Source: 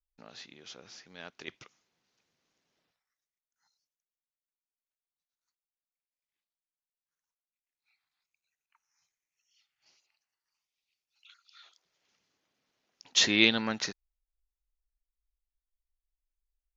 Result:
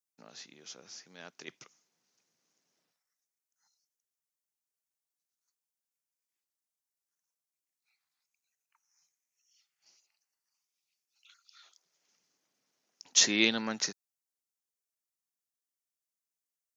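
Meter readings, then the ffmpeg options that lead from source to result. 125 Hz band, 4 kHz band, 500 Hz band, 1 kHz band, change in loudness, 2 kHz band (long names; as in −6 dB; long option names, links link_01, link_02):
−5.5 dB, −2.5 dB, −2.5 dB, −2.5 dB, −1.5 dB, −3.5 dB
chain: -af "highpass=frequency=130:width=0.5412,highpass=frequency=130:width=1.3066,highshelf=frequency=4700:width_type=q:width=1.5:gain=6.5,volume=-2.5dB"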